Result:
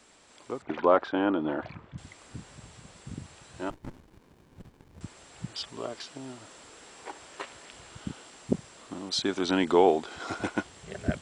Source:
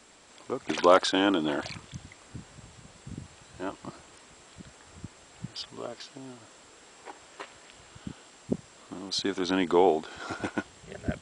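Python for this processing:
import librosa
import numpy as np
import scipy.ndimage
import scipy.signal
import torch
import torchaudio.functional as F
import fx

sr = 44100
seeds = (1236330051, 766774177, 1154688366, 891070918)

y = fx.lowpass(x, sr, hz=1600.0, slope=12, at=(0.62, 1.98))
y = fx.rider(y, sr, range_db=3, speed_s=2.0)
y = fx.running_max(y, sr, window=65, at=(3.7, 5.01))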